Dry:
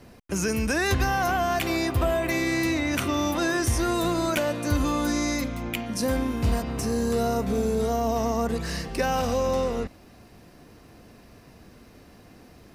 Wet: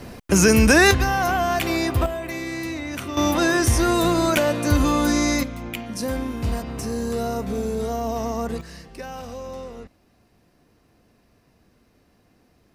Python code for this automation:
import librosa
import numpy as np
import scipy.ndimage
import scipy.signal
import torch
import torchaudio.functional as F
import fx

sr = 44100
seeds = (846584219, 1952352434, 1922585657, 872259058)

y = fx.gain(x, sr, db=fx.steps((0.0, 11.0), (0.91, 3.0), (2.06, -4.5), (3.17, 5.5), (5.43, -1.0), (8.61, -10.0)))